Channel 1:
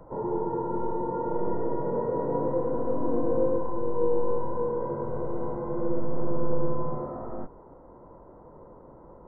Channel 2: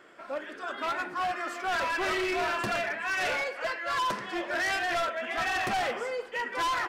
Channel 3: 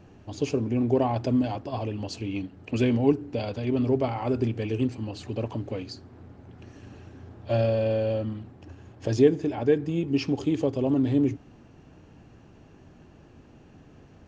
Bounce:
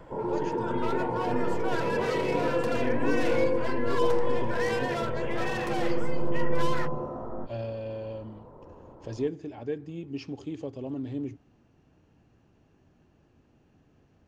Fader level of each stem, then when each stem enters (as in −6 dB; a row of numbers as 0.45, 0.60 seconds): −0.5, −5.5, −11.0 decibels; 0.00, 0.00, 0.00 seconds